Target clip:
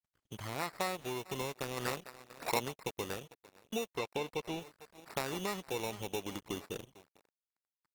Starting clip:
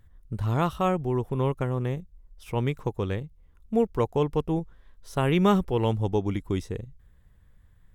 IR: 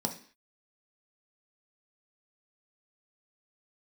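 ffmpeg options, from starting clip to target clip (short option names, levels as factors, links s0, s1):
-filter_complex "[0:a]asplit=3[s0][s1][s2];[s0]afade=t=out:st=0.42:d=0.02[s3];[s1]highshelf=f=7100:g=10.5,afade=t=in:st=0.42:d=0.02,afade=t=out:st=1:d=0.02[s4];[s2]afade=t=in:st=1:d=0.02[s5];[s3][s4][s5]amix=inputs=3:normalize=0,aecho=1:1:449:0.0891,acompressor=threshold=0.0447:ratio=16,asplit=3[s6][s7][s8];[s6]afade=t=out:st=1.76:d=0.02[s9];[s7]equalizer=f=2400:w=0.39:g=14.5,afade=t=in:st=1.76:d=0.02,afade=t=out:st=2.59:d=0.02[s10];[s8]afade=t=in:st=2.59:d=0.02[s11];[s9][s10][s11]amix=inputs=3:normalize=0,acrusher=samples=14:mix=1:aa=0.000001,asettb=1/sr,asplit=3[s12][s13][s14];[s12]atrim=end=3.974[s15];[s13]atrim=start=3.97:end=4.61,asetpts=PTS-STARTPTS,afade=t=in:d=0.004:c=qsin,afade=t=out:st=0.636:d=0.004:c=qsin,acrossover=split=5300[s16][s17];[s17]acompressor=threshold=0.00178:ratio=4:attack=1:release=60[s18];[s16][s18]amix=inputs=2:normalize=0[s19];[s14]atrim=start=4.606[s20];[s15][s19]acrossfade=d=0.004:c1=hsin:c2=qsin[s21];[s21][s20]acrossfade=d=0.004:c1=qsin:c2=hsin,aeval=exprs='sgn(val(0))*max(abs(val(0))-0.00422,0)':c=same,highpass=f=630:p=1,volume=1.12" -ar 48000 -c:a libopus -b:a 16k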